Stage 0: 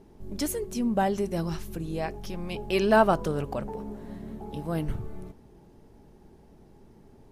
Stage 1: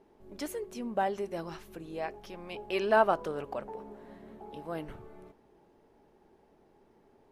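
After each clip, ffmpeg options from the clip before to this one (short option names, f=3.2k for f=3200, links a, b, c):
-af "bass=f=250:g=-15,treble=f=4k:g=-9,volume=-3dB"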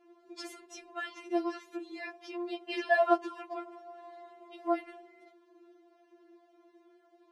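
-af "highpass=190,lowpass=6.1k,afftfilt=real='re*4*eq(mod(b,16),0)':imag='im*4*eq(mod(b,16),0)':win_size=2048:overlap=0.75,volume=5dB"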